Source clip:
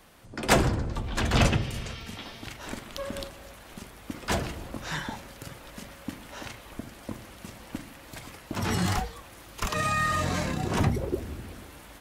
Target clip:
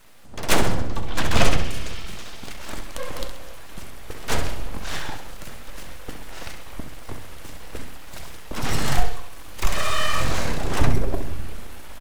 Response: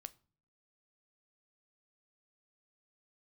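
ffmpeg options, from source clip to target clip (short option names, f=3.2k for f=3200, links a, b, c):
-filter_complex "[0:a]asubboost=boost=5.5:cutoff=69,afreqshift=-29,aeval=exprs='abs(val(0))':c=same,aecho=1:1:66|132|198|264|330:0.355|0.16|0.0718|0.0323|0.0145,asplit=2[a][b];[1:a]atrim=start_sample=2205[c];[b][c]afir=irnorm=-1:irlink=0,volume=5dB[d];[a][d]amix=inputs=2:normalize=0,volume=-1dB"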